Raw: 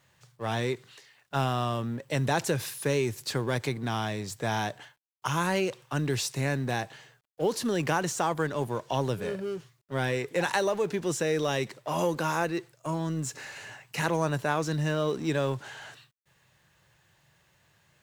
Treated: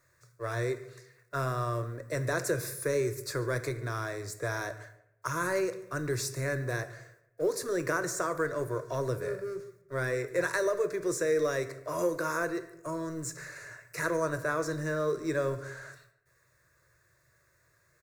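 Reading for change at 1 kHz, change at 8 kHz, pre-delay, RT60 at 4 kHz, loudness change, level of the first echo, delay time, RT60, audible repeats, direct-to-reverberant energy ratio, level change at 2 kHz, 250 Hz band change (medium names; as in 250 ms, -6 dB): -5.5 dB, -1.5 dB, 3 ms, 0.50 s, -2.5 dB, -21.0 dB, 143 ms, 0.80 s, 1, 9.5 dB, -1.0 dB, -5.0 dB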